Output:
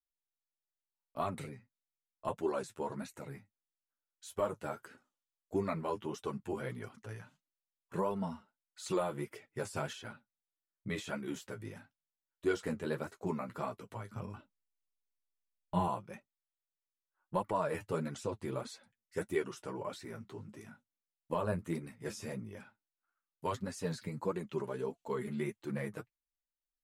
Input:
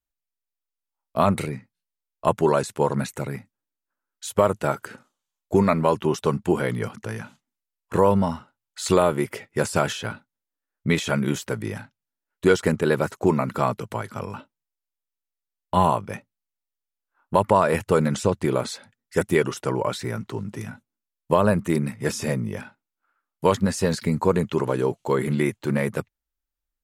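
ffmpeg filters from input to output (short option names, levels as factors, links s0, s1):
-filter_complex "[0:a]flanger=delay=4.2:depth=9.6:regen=-30:speed=0.12:shape=triangular,asettb=1/sr,asplit=3[s0][s1][s2];[s0]atrim=end=14.104[s3];[s1]atrim=start=14.1:end=15.88,asetpts=PTS-STARTPTS,afade=t=in:d=0.004:c=qsin,afade=t=out:st=1.776:d=0.004:c=qsin,lowshelf=f=200:g=11[s4];[s2]atrim=start=15.876[s5];[s3][s4]acrossfade=d=0.004:c1=hsin:c2=qsin[s6];[s6][s5]acrossfade=d=0.004:c1=qsin:c2=hsin,flanger=delay=2.6:depth=7.5:regen=28:speed=1.6:shape=sinusoidal,volume=0.376"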